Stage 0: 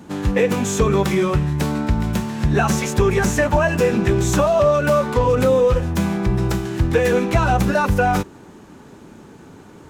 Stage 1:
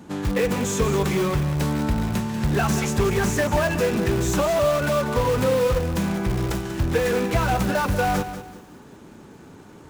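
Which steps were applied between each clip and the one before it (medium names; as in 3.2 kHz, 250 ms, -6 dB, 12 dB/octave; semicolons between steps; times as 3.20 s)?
in parallel at -10.5 dB: integer overflow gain 15 dB; on the sum: bit-crushed delay 190 ms, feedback 35%, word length 7-bit, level -11 dB; trim -5 dB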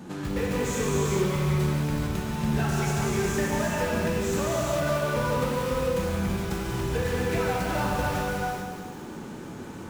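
compression 2:1, threshold -38 dBFS, peak gain reduction 12 dB; gated-style reverb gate 470 ms flat, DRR -5 dB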